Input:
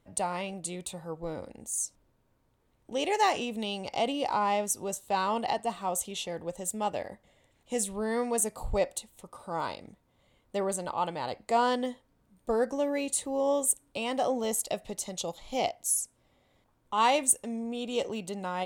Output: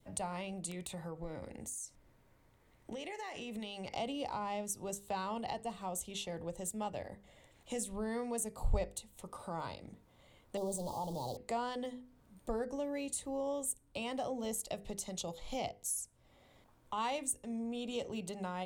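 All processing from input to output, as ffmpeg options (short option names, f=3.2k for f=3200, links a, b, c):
-filter_complex "[0:a]asettb=1/sr,asplit=3[a][b][c];[a]atrim=end=0.714[d];[b]atrim=start=0.71:end=3.94,asetpts=PTS-STARTPTS,afade=t=in:d=0.004:c=qsin,afade=t=out:st=3.226:d=0.004:c=qsin,equalizer=f=2k:w=4.2:g=8,acompressor=threshold=-35dB:ratio=16:attack=3.2:release=140:knee=1:detection=peak,aeval=exprs='(mod(23.7*val(0)+1,2)-1)/23.7':c=same[e];[c]atrim=start=3.936[f];[d][e]acrossfade=d=0.004:c1=hsin:c2=qsin[g];[g][f]acrossfade=d=0.004:c1=qsin:c2=hsin,asettb=1/sr,asplit=3[h][i][j];[h]atrim=end=10.574[k];[i]atrim=start=10.57:end=11.37,asetpts=PTS-STARTPTS,afade=t=in:d=0.004:c=qsin,afade=t=out:st=0.796:d=0.004:c=qsin,aeval=exprs='val(0)+0.5*0.0224*sgn(val(0))':c=same,asuperstop=centerf=1900:order=8:qfactor=0.7,lowshelf=f=150:g=-5.5[l];[j]atrim=start=11.366[m];[k][l]acrossfade=d=0.004:c1=hsin:c2=qsin[n];[n][m]acrossfade=d=0.004:c1=qsin:c2=hsin,bandreject=f=50:t=h:w=6,bandreject=f=100:t=h:w=6,bandreject=f=150:t=h:w=6,bandreject=f=200:t=h:w=6,bandreject=f=250:t=h:w=6,bandreject=f=300:t=h:w=6,bandreject=f=350:t=h:w=6,bandreject=f=400:t=h:w=6,bandreject=f=450:t=h:w=6,bandreject=f=500:t=h:w=6,acrossover=split=140[o][p];[p]acompressor=threshold=-51dB:ratio=2[q];[o][q]amix=inputs=2:normalize=0,adynamicequalizer=threshold=0.002:dfrequency=1300:dqfactor=1.1:tfrequency=1300:tqfactor=1.1:attack=5:release=100:ratio=0.375:range=2:mode=cutabove:tftype=bell,volume=4dB"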